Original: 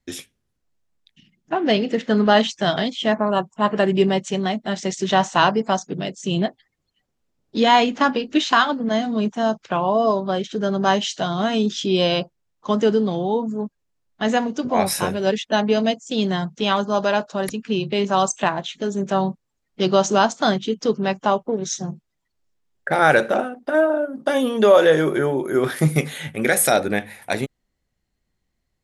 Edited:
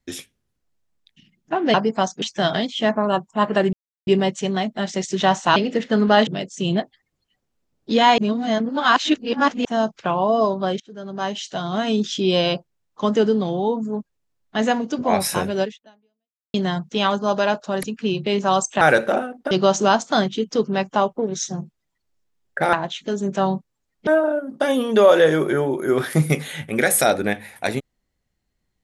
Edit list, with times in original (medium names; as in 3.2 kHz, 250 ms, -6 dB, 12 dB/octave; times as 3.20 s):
1.74–2.45 s: swap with 5.45–5.93 s
3.96 s: insert silence 0.34 s
7.84–9.31 s: reverse
10.46–11.67 s: fade in, from -22.5 dB
15.26–16.20 s: fade out exponential
18.47–19.81 s: swap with 23.03–23.73 s